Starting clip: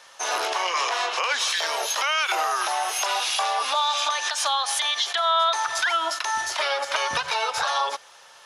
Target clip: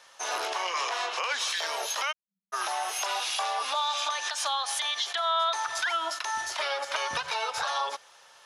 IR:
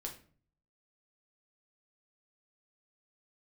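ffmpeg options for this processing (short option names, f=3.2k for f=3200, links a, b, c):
-filter_complex "[0:a]asplit=3[a][b][c];[a]afade=t=out:st=2.11:d=0.02[d];[b]asuperpass=centerf=190:order=8:qfactor=6.4,afade=t=in:st=2.11:d=0.02,afade=t=out:st=2.52:d=0.02[e];[c]afade=t=in:st=2.52:d=0.02[f];[d][e][f]amix=inputs=3:normalize=0,volume=-5.5dB"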